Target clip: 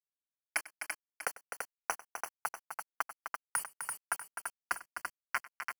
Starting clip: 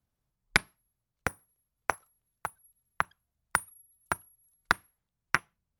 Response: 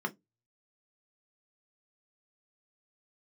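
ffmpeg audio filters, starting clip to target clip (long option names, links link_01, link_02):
-af "highpass=800,areverse,acompressor=threshold=-39dB:ratio=10,areverse,aeval=exprs='val(0)*gte(abs(val(0)),0.00668)':channel_layout=same,asuperstop=centerf=3700:order=12:qfactor=3.3,aecho=1:1:97|255|338|643:0.112|0.376|0.531|0.224,volume=7dB"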